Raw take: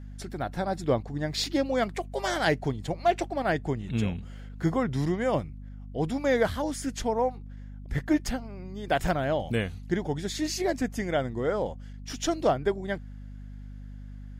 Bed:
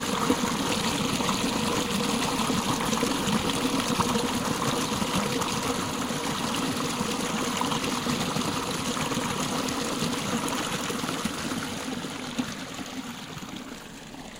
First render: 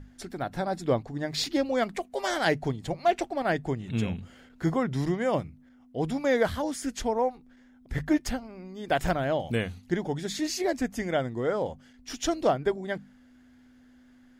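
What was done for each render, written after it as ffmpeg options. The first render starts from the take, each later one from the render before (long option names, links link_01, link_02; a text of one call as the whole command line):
ffmpeg -i in.wav -af "bandreject=frequency=50:width_type=h:width=6,bandreject=frequency=100:width_type=h:width=6,bandreject=frequency=150:width_type=h:width=6,bandreject=frequency=200:width_type=h:width=6" out.wav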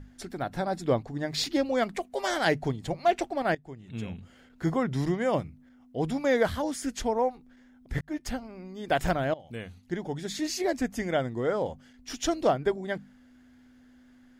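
ffmpeg -i in.wav -filter_complex "[0:a]asplit=4[link_01][link_02][link_03][link_04];[link_01]atrim=end=3.55,asetpts=PTS-STARTPTS,afade=type=out:start_time=3.546:duration=0.004:curve=hsin:silence=0.105925[link_05];[link_02]atrim=start=3.55:end=8.01,asetpts=PTS-STARTPTS,afade=type=in:duration=1.3:silence=0.105925,afade=type=out:start_time=4.456:duration=0.004:curve=hsin[link_06];[link_03]atrim=start=8.01:end=9.34,asetpts=PTS-STARTPTS,afade=type=in:duration=0.4,afade=type=out:start_time=1.326:duration=0.004:curve=hsin:silence=0.0944061[link_07];[link_04]atrim=start=9.34,asetpts=PTS-STARTPTS,afade=type=in:duration=1.63:curve=qsin:silence=0.0944061[link_08];[link_05][link_06][link_07][link_08]concat=n=4:v=0:a=1" out.wav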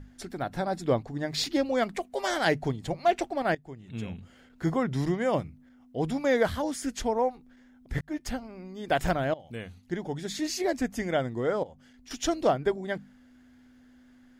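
ffmpeg -i in.wav -filter_complex "[0:a]asettb=1/sr,asplit=3[link_01][link_02][link_03];[link_01]atrim=end=11.634[link_04];[link_02]atrim=start=11.63:end=12.11,asetpts=PTS-STARTPTS,afade=type=in:duration=0.004:curve=qsin,afade=type=out:start_time=0.476:duration=0.004:curve=qsin,acompressor=threshold=-53dB:ratio=2:attack=3.2:release=140:knee=1:detection=peak[link_05];[link_03]atrim=start=12.106[link_06];[link_04][link_05]acrossfade=duration=0.004:curve1=hsin:curve2=qsin[link_07];[link_07][link_06]acrossfade=duration=0.004:curve1=qsin:curve2=hsin" out.wav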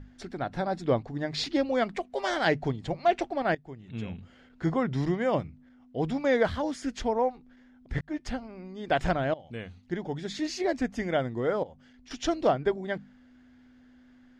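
ffmpeg -i in.wav -af "lowpass=5000" out.wav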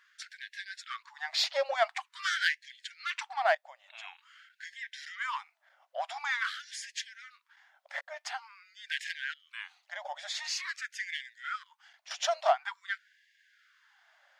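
ffmpeg -i in.wav -filter_complex "[0:a]asplit=2[link_01][link_02];[link_02]asoftclip=type=tanh:threshold=-26dB,volume=-4.5dB[link_03];[link_01][link_03]amix=inputs=2:normalize=0,afftfilt=real='re*gte(b*sr/1024,530*pow(1600/530,0.5+0.5*sin(2*PI*0.47*pts/sr)))':imag='im*gte(b*sr/1024,530*pow(1600/530,0.5+0.5*sin(2*PI*0.47*pts/sr)))':win_size=1024:overlap=0.75" out.wav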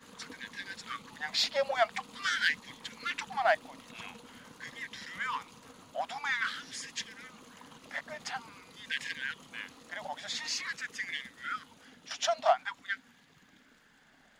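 ffmpeg -i in.wav -i bed.wav -filter_complex "[1:a]volume=-26dB[link_01];[0:a][link_01]amix=inputs=2:normalize=0" out.wav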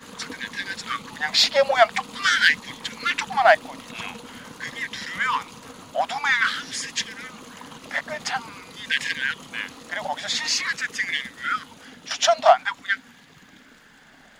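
ffmpeg -i in.wav -af "volume=11.5dB,alimiter=limit=-2dB:level=0:latency=1" out.wav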